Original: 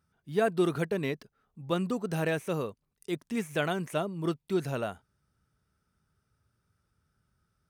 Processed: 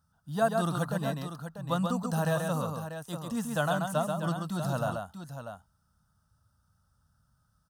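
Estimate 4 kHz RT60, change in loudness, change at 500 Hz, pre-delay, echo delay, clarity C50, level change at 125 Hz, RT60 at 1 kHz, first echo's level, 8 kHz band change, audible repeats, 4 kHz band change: no reverb audible, +0.5 dB, −1.0 dB, no reverb audible, 134 ms, no reverb audible, +4.0 dB, no reverb audible, −4.5 dB, +5.5 dB, 2, 0.0 dB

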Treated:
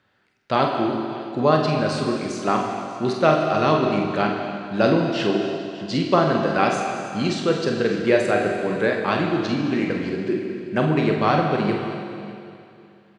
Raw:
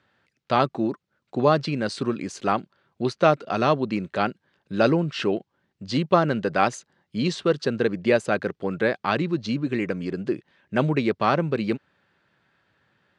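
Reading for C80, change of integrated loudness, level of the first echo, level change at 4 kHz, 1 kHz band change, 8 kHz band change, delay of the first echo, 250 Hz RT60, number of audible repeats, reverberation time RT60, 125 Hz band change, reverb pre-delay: 3.5 dB, +2.5 dB, −6.5 dB, +3.5 dB, +3.0 dB, +3.0 dB, 48 ms, 2.6 s, 2, 2.6 s, +2.5 dB, 20 ms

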